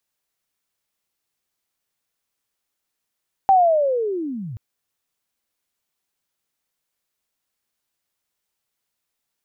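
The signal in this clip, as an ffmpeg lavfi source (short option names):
-f lavfi -i "aevalsrc='pow(10,(-9.5-20*t/1.08)/20)*sin(2*PI*(790*t-691*t*t/(2*1.08)))':d=1.08:s=44100"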